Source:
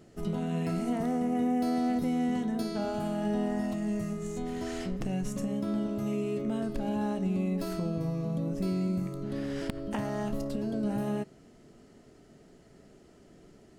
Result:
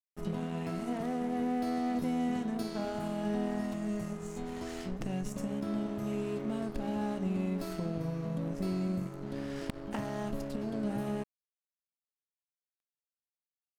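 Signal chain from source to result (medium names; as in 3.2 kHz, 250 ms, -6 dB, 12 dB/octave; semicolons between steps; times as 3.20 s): 0.47–1.95 s: tone controls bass -3 dB, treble -3 dB; crossover distortion -43 dBFS; trim -1.5 dB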